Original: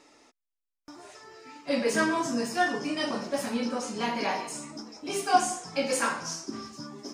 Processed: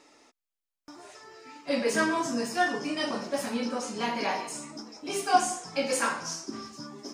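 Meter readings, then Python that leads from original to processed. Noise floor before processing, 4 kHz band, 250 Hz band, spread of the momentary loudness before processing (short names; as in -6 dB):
-85 dBFS, 0.0 dB, -1.0 dB, 18 LU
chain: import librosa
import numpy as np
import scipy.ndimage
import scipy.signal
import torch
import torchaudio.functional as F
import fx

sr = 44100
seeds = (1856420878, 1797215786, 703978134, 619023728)

y = fx.low_shelf(x, sr, hz=160.0, db=-4.0)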